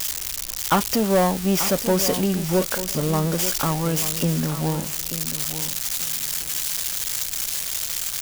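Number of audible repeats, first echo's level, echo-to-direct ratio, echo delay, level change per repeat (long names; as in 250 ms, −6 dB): 2, −11.5 dB, −11.5 dB, 887 ms, −13.5 dB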